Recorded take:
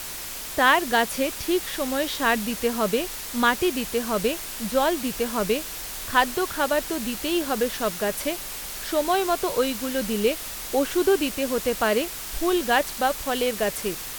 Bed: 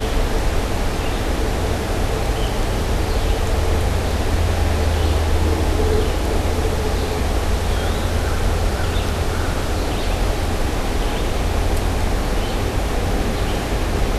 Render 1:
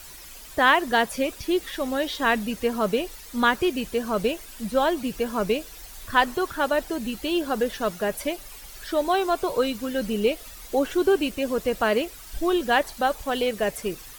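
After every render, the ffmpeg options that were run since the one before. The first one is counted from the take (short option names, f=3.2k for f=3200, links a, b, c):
-af "afftdn=nr=12:nf=-35"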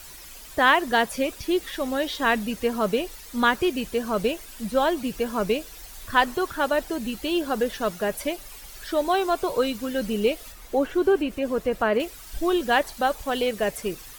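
-filter_complex "[0:a]asettb=1/sr,asplit=3[a][b][c];[a]atrim=end=10.524[d];[b]atrim=start=10.52:end=12,asetpts=PTS-STARTPTS,afade=t=in:d=0.004:c=qsin,afade=t=out:st=1.476:d=0.004:c=qsin,acrossover=split=2500[e][f];[f]acompressor=threshold=-46dB:ratio=4:attack=1:release=60[g];[e][g]amix=inputs=2:normalize=0[h];[c]atrim=start=11.996[i];[d][h]acrossfade=d=0.004:c1=hsin:c2=qsin[j];[j][i]acrossfade=d=0.004:c1=qsin:c2=hsin"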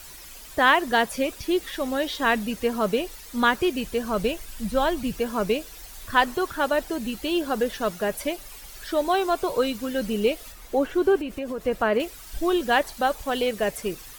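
-filter_complex "[0:a]asettb=1/sr,asplit=3[a][b][c];[a]atrim=end=3.674[d];[b]atrim=start=3.67:end=5.15,asetpts=PTS-STARTPTS,afade=t=in:d=0.004:c=qsin,afade=t=out:st=1.476:d=0.004:c=qsin,asubboost=boost=6:cutoff=180[e];[c]atrim=start=5.146[f];[d][e]acrossfade=d=0.004:c1=hsin:c2=qsin[g];[g][f]acrossfade=d=0.004:c1=qsin:c2=hsin,asettb=1/sr,asplit=3[h][i][j];[h]atrim=end=11.194[k];[i]atrim=start=11.19:end=11.66,asetpts=PTS-STARTPTS,afade=t=in:d=0.004:c=qsin,afade=t=out:st=0.466:d=0.004:c=qsin,acompressor=threshold=-26dB:ratio=6:attack=3.2:release=140:knee=1:detection=peak[l];[j]atrim=start=11.656[m];[k][l]acrossfade=d=0.004:c1=hsin:c2=qsin[n];[n][m]acrossfade=d=0.004:c1=qsin:c2=hsin"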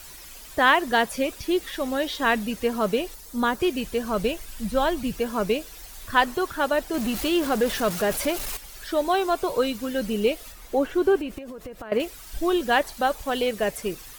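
-filter_complex "[0:a]asettb=1/sr,asplit=3[a][b][c];[a]atrim=end=3.144[d];[b]atrim=start=3.14:end=3.6,asetpts=PTS-STARTPTS,afade=t=in:d=0.004:c=qsin,afade=t=out:st=0.456:d=0.004:c=qsin,equalizer=f=2.4k:w=0.77:g=-8.5[e];[c]atrim=start=3.596[f];[d][e]acrossfade=d=0.004:c1=hsin:c2=qsin[g];[g][f]acrossfade=d=0.004:c1=qsin:c2=hsin,asettb=1/sr,asplit=3[h][i][j];[h]atrim=end=6.944[k];[i]atrim=start=6.94:end=8.57,asetpts=PTS-STARTPTS,afade=t=in:d=0.004:c=qsin,afade=t=out:st=1.626:d=0.004:c=qsin,aeval=exprs='val(0)+0.5*0.0422*sgn(val(0))':c=same[l];[j]atrim=start=8.566[m];[k][l]acrossfade=d=0.004:c1=hsin:c2=qsin[n];[n][m]acrossfade=d=0.004:c1=qsin:c2=hsin,asettb=1/sr,asplit=3[o][p][q];[o]atrim=end=11.384[r];[p]atrim=start=11.38:end=11.92,asetpts=PTS-STARTPTS,afade=t=in:d=0.004:c=qsin,afade=t=out:st=0.536:d=0.004:c=qsin,acompressor=threshold=-33dB:ratio=20:attack=3.2:release=140:knee=1:detection=peak[s];[q]atrim=start=11.916[t];[r][s]acrossfade=d=0.004:c1=hsin:c2=qsin[u];[u][t]acrossfade=d=0.004:c1=qsin:c2=hsin"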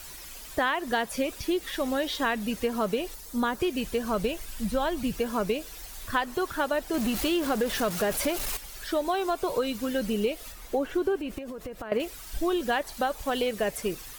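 -af "acompressor=threshold=-23dB:ratio=6"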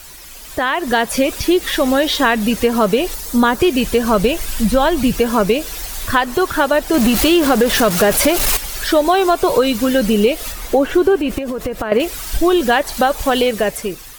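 -filter_complex "[0:a]asplit=2[a][b];[b]alimiter=level_in=1dB:limit=-24dB:level=0:latency=1:release=203,volume=-1dB,volume=-0.5dB[c];[a][c]amix=inputs=2:normalize=0,dynaudnorm=f=200:g=7:m=12.5dB"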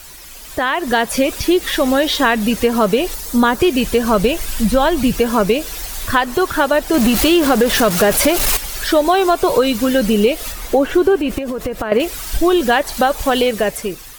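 -af anull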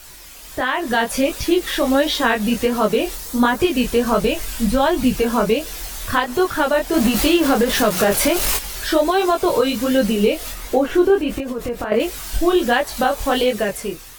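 -af "flanger=delay=19:depth=6.7:speed=1.4"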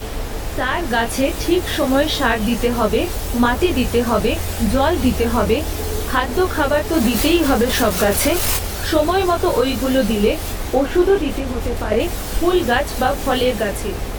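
-filter_complex "[1:a]volume=-6.5dB[a];[0:a][a]amix=inputs=2:normalize=0"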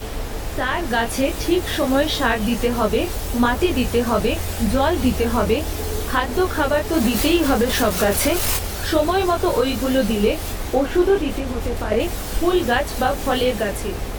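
-af "volume=-2dB"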